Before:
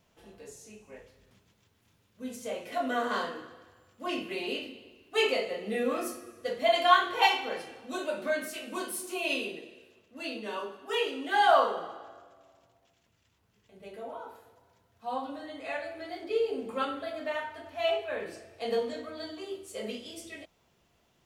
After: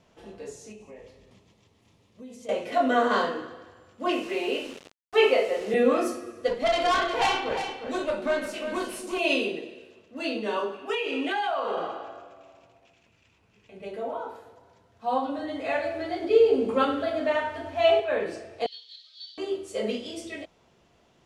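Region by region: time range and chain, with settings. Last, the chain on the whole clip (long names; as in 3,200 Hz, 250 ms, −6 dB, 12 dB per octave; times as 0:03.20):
0:00.72–0:02.49: parametric band 1,500 Hz −15 dB 0.2 octaves + downward compressor 4 to 1, threshold −50 dBFS
0:04.12–0:05.74: band-pass filter 320–3,000 Hz + bit-depth reduction 8 bits, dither none
0:06.48–0:09.19: tube saturation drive 27 dB, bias 0.6 + single-tap delay 355 ms −8.5 dB
0:10.73–0:13.85: parametric band 2,500 Hz +11 dB 0.3 octaves + downward compressor 16 to 1, threshold −31 dBFS
0:15.38–0:18.00: low-shelf EQ 150 Hz +9 dB + feedback echo at a low word length 101 ms, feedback 55%, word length 9 bits, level −12.5 dB
0:18.66–0:19.38: spike at every zero crossing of −36.5 dBFS + flat-topped band-pass 3,900 Hz, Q 3.1
whole clip: low-pass filter 8,000 Hz 12 dB per octave; parametric band 420 Hz +4.5 dB 2.8 octaves; level +4.5 dB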